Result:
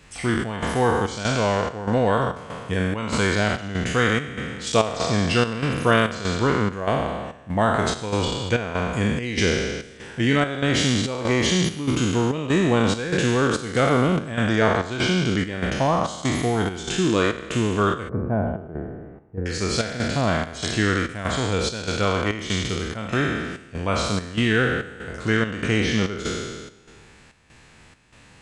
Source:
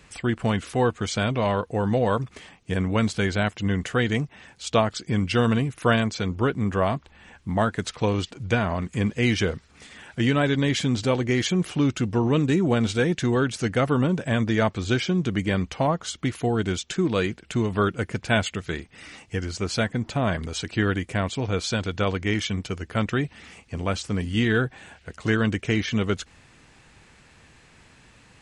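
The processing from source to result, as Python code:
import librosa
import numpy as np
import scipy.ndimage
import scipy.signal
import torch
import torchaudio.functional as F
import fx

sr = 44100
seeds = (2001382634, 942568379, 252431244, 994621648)

y = fx.spec_trails(x, sr, decay_s=1.63)
y = fx.bessel_lowpass(y, sr, hz=660.0, order=4, at=(18.09, 19.46))
y = fx.chopper(y, sr, hz=1.6, depth_pct=65, duty_pct=70)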